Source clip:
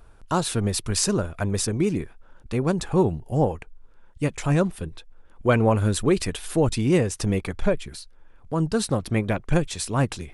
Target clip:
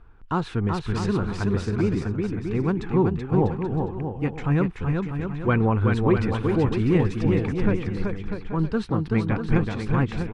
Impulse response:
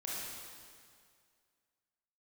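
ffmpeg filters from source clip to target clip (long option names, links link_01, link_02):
-filter_complex "[0:a]lowpass=2200,equalizer=frequency=600:width=3.6:gain=-13,asplit=2[link_01][link_02];[link_02]aecho=0:1:380|646|832.2|962.5|1054:0.631|0.398|0.251|0.158|0.1[link_03];[link_01][link_03]amix=inputs=2:normalize=0"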